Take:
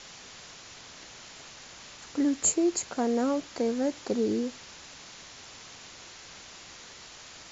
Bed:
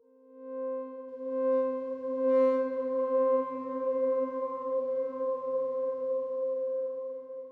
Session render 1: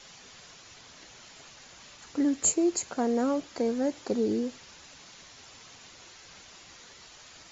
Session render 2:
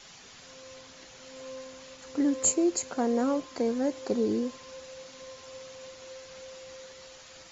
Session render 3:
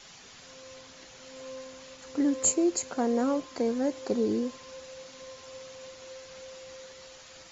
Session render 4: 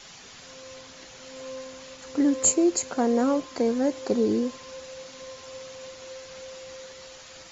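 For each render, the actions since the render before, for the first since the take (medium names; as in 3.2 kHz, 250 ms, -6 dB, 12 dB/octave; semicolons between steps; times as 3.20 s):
noise reduction 6 dB, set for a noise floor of -48 dBFS
add bed -15.5 dB
no audible change
trim +4 dB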